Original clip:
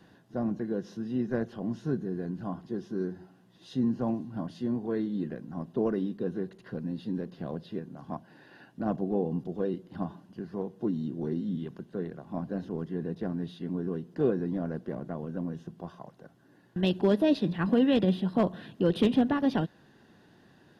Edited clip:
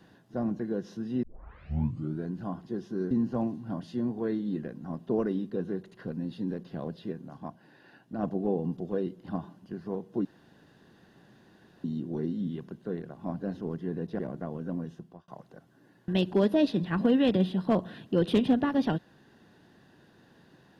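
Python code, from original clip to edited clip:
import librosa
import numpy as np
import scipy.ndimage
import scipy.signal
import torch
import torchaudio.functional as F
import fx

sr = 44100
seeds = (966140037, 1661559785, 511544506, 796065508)

y = fx.edit(x, sr, fx.tape_start(start_s=1.23, length_s=1.04),
    fx.cut(start_s=3.11, length_s=0.67),
    fx.clip_gain(start_s=8.04, length_s=0.86, db=-3.0),
    fx.insert_room_tone(at_s=10.92, length_s=1.59),
    fx.cut(start_s=13.27, length_s=1.6),
    fx.fade_out_span(start_s=15.42, length_s=0.54, curve='qsin'), tone=tone)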